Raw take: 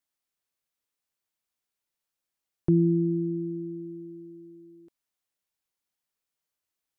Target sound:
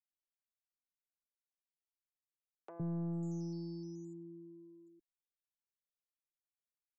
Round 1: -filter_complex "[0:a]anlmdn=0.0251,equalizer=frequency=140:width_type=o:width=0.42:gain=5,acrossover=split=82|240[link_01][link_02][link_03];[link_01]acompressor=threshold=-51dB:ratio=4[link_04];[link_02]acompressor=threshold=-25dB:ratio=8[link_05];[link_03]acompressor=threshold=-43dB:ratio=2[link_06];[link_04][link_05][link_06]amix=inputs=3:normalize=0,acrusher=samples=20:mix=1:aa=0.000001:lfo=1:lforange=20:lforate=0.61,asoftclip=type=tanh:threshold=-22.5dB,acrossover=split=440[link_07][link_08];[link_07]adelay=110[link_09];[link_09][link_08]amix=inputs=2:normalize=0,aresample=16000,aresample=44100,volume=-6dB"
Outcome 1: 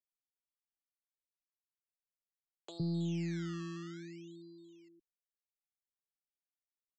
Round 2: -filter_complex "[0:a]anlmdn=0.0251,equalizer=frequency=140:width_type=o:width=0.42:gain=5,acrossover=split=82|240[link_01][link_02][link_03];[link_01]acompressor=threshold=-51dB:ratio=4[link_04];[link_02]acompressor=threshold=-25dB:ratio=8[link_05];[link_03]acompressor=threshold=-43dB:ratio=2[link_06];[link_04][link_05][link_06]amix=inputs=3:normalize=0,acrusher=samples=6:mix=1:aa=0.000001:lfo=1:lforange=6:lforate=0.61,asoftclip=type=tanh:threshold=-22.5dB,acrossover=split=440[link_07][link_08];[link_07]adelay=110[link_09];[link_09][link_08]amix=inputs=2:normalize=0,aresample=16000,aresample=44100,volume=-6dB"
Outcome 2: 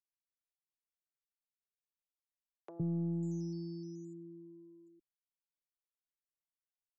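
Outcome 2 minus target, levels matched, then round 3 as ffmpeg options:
soft clipping: distortion −6 dB
-filter_complex "[0:a]anlmdn=0.0251,equalizer=frequency=140:width_type=o:width=0.42:gain=5,acrossover=split=82|240[link_01][link_02][link_03];[link_01]acompressor=threshold=-51dB:ratio=4[link_04];[link_02]acompressor=threshold=-25dB:ratio=8[link_05];[link_03]acompressor=threshold=-43dB:ratio=2[link_06];[link_04][link_05][link_06]amix=inputs=3:normalize=0,acrusher=samples=6:mix=1:aa=0.000001:lfo=1:lforange=6:lforate=0.61,asoftclip=type=tanh:threshold=-28.5dB,acrossover=split=440[link_07][link_08];[link_07]adelay=110[link_09];[link_09][link_08]amix=inputs=2:normalize=0,aresample=16000,aresample=44100,volume=-6dB"

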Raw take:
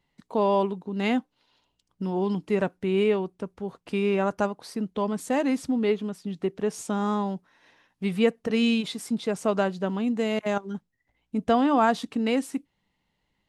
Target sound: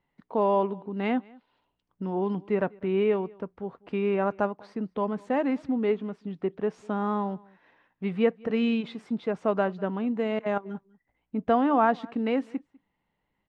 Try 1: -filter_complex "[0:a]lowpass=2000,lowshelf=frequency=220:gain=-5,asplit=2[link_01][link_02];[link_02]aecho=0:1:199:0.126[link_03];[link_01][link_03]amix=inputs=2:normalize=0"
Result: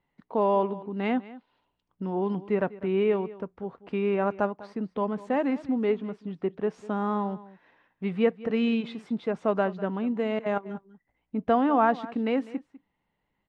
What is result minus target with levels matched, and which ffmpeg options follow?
echo-to-direct +7 dB
-filter_complex "[0:a]lowpass=2000,lowshelf=frequency=220:gain=-5,asplit=2[link_01][link_02];[link_02]aecho=0:1:199:0.0562[link_03];[link_01][link_03]amix=inputs=2:normalize=0"

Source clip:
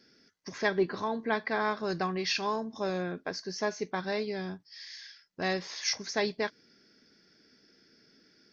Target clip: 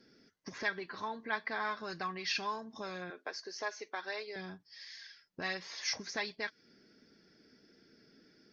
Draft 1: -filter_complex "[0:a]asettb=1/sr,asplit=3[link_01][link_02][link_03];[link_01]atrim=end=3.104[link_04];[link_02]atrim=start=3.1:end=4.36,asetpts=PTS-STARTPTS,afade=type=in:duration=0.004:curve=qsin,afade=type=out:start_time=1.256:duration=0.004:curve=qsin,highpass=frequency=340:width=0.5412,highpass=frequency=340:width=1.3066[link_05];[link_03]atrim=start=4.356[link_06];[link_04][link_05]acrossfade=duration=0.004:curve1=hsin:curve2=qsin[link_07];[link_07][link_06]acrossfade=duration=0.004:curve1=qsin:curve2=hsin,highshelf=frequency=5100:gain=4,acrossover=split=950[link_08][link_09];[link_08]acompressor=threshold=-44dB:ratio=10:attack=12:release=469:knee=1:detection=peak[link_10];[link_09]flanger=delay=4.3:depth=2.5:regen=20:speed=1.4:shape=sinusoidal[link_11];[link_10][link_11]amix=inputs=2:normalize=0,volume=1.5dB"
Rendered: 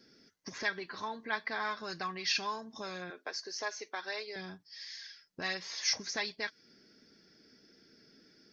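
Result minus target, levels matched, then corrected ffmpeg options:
8,000 Hz band +4.0 dB
-filter_complex "[0:a]asettb=1/sr,asplit=3[link_01][link_02][link_03];[link_01]atrim=end=3.104[link_04];[link_02]atrim=start=3.1:end=4.36,asetpts=PTS-STARTPTS,afade=type=in:duration=0.004:curve=qsin,afade=type=out:start_time=1.256:duration=0.004:curve=qsin,highpass=frequency=340:width=0.5412,highpass=frequency=340:width=1.3066[link_05];[link_03]atrim=start=4.356[link_06];[link_04][link_05]acrossfade=duration=0.004:curve1=hsin:curve2=qsin[link_07];[link_07][link_06]acrossfade=duration=0.004:curve1=qsin:curve2=hsin,highshelf=frequency=5100:gain=-6,acrossover=split=950[link_08][link_09];[link_08]acompressor=threshold=-44dB:ratio=10:attack=12:release=469:knee=1:detection=peak[link_10];[link_09]flanger=delay=4.3:depth=2.5:regen=20:speed=1.4:shape=sinusoidal[link_11];[link_10][link_11]amix=inputs=2:normalize=0,volume=1.5dB"

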